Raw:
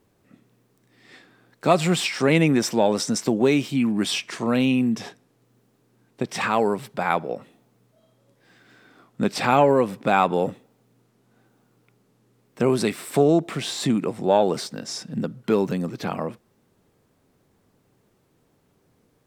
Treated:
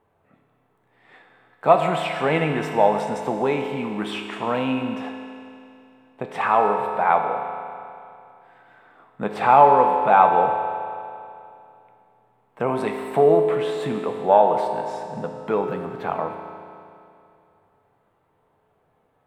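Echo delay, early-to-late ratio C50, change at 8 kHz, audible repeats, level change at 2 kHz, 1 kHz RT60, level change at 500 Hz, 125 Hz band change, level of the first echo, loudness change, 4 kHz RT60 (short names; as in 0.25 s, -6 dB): none, 4.5 dB, under -15 dB, none, -0.5 dB, 2.6 s, +2.0 dB, -5.0 dB, none, +1.5 dB, 2.5 s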